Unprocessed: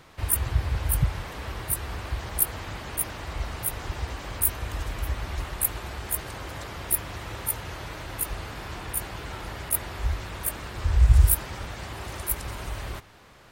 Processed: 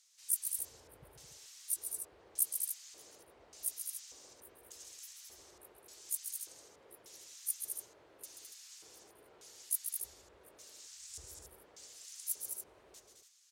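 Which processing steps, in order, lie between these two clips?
LFO band-pass square 0.85 Hz 440–6400 Hz; pre-emphasis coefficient 0.9; loudspeakers at several distances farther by 46 m -7 dB, 73 m -6 dB, 98 m -9 dB; gain +1 dB

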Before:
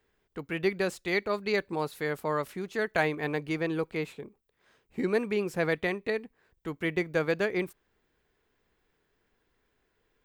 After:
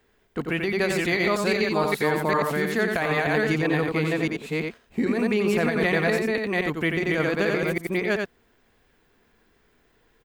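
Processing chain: reverse delay 0.389 s, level -1.5 dB; on a send: echo 89 ms -6 dB; on the sum: dynamic EQ 470 Hz, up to -3 dB, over -35 dBFS, Q 0.88; in parallel at -1.5 dB: level quantiser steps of 13 dB; on the sum: small resonant body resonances 230/690 Hz, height 6 dB, ringing for 95 ms; negative-ratio compressor -25 dBFS, ratio -1; gain +3.5 dB

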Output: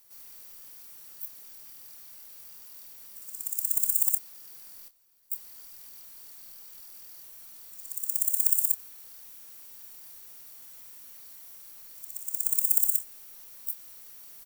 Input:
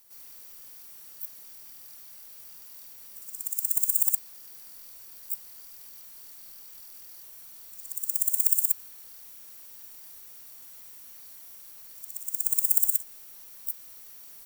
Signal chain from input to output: 4.88–5.32 gate -36 dBFS, range -18 dB; doubler 27 ms -11 dB; gain -1 dB

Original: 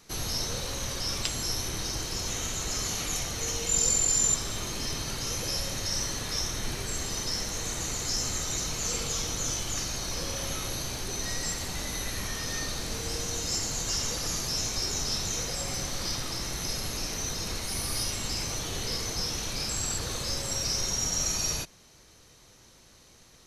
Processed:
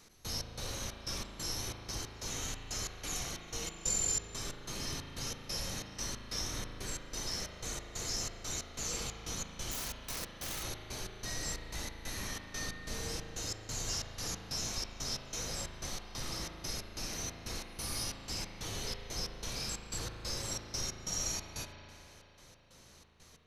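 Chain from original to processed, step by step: in parallel at -2 dB: compressor, threshold -45 dBFS, peak gain reduction 21.5 dB; on the sum: step gate "x..xx..xxx" 183 bpm -24 dB; 9.71–10.63 wrapped overs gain 25.5 dB; on a send at -3.5 dB: reverb RT60 3.4 s, pre-delay 37 ms; on the sum: gain -8 dB

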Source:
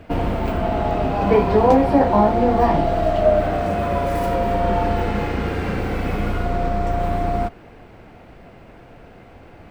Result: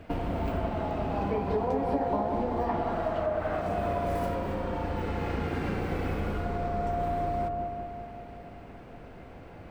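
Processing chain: 2.69–3.61 bell 1300 Hz +9 dB 1.6 oct; compressor 6:1, threshold -23 dBFS, peak gain reduction 14.5 dB; dark delay 0.19 s, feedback 63%, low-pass 1300 Hz, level -4 dB; gain -5 dB

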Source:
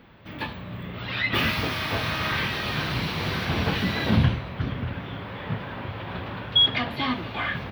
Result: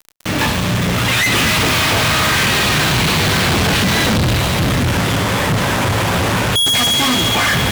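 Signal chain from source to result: thin delay 69 ms, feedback 84%, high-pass 3200 Hz, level -8 dB; crackle 450/s -47 dBFS; fuzz box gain 47 dB, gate -41 dBFS

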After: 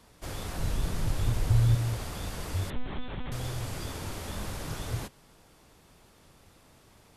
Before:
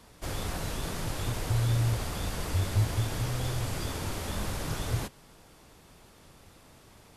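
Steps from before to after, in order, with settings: 0.57–1.75 low shelf 150 Hz +11.5 dB; 2.7–3.32 monotone LPC vocoder at 8 kHz 250 Hz; gain -3 dB

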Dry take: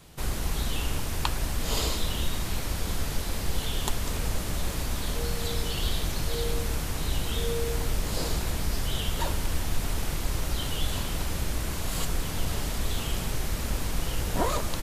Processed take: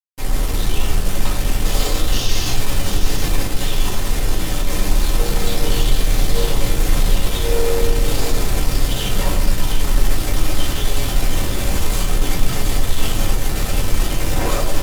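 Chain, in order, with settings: AGC gain up to 9 dB; fuzz box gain 29 dB, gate -38 dBFS; painted sound noise, 2.12–2.53, 2500–6800 Hz -20 dBFS; on a send: split-band echo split 1200 Hz, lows 0.103 s, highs 0.721 s, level -7 dB; on the sum: shoebox room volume 120 m³, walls furnished, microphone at 2.1 m; gain -11.5 dB

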